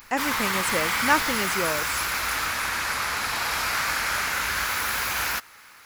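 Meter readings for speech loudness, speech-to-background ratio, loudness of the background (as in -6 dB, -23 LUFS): -28.0 LUFS, -3.0 dB, -25.0 LUFS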